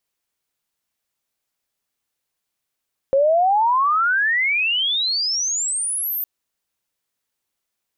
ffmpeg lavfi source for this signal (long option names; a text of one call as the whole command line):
ffmpeg -f lavfi -i "aevalsrc='pow(10,(-12.5-9*t/3.11)/20)*sin(2*PI*530*3.11/log(14000/530)*(exp(log(14000/530)*t/3.11)-1))':duration=3.11:sample_rate=44100" out.wav